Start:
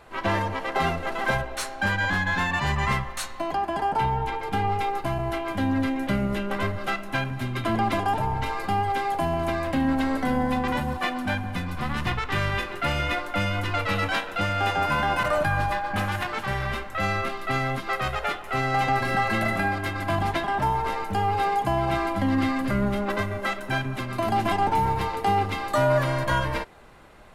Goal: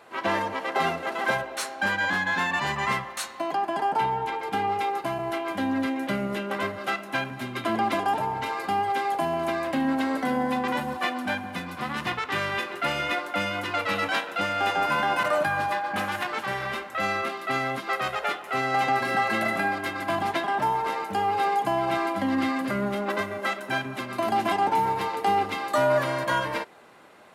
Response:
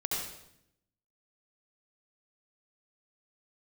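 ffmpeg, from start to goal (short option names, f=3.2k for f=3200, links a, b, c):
-af "highpass=220"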